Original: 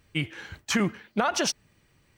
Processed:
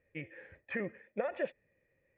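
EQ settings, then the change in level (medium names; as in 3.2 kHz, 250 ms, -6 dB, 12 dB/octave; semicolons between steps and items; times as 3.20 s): cascade formant filter e; +3.0 dB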